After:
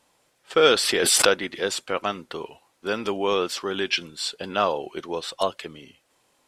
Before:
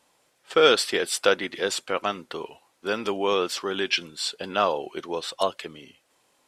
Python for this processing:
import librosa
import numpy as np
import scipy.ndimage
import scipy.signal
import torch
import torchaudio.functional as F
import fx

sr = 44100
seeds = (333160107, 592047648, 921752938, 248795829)

y = fx.low_shelf(x, sr, hz=120.0, db=7.0)
y = fx.pre_swell(y, sr, db_per_s=20.0, at=(0.72, 1.25), fade=0.02)